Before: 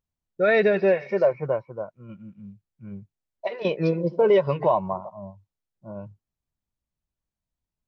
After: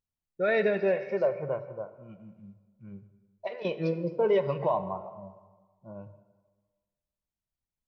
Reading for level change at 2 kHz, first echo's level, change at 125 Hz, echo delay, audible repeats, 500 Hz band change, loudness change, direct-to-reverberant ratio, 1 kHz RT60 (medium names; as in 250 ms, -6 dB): -6.0 dB, no echo, -6.0 dB, no echo, no echo, -6.0 dB, -6.5 dB, 11.0 dB, 1.5 s